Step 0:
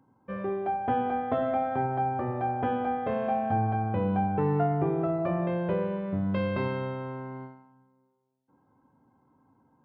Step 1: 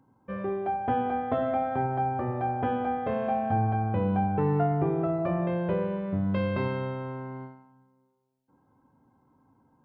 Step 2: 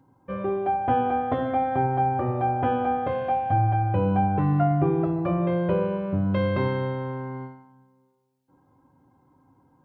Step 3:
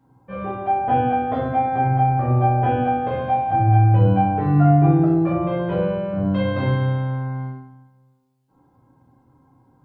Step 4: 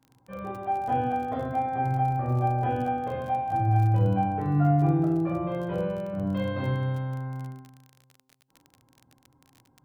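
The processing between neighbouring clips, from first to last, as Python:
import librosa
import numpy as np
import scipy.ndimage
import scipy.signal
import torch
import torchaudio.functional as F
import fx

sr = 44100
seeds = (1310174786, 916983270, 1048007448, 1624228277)

y1 = fx.low_shelf(x, sr, hz=68.0, db=7.5)
y2 = fx.notch_comb(y1, sr, f0_hz=220.0)
y2 = y2 * 10.0 ** (5.0 / 20.0)
y3 = fx.room_shoebox(y2, sr, seeds[0], volume_m3=66.0, walls='mixed', distance_m=1.5)
y3 = y3 * 10.0 ** (-4.0 / 20.0)
y4 = fx.dmg_crackle(y3, sr, seeds[1], per_s=34.0, level_db=-29.0)
y4 = y4 * 10.0 ** (-7.5 / 20.0)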